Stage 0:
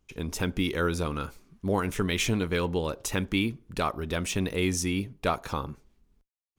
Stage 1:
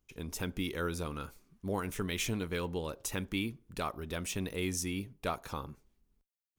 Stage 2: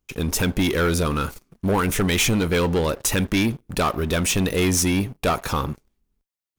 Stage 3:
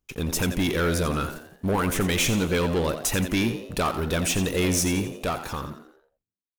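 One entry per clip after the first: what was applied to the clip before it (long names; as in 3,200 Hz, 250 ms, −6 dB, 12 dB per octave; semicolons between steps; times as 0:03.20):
high-shelf EQ 9,800 Hz +9.5 dB; level −8 dB
leveller curve on the samples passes 3; level +7 dB
fade-out on the ending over 1.80 s; echo with shifted repeats 87 ms, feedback 44%, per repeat +81 Hz, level −10.5 dB; level −3.5 dB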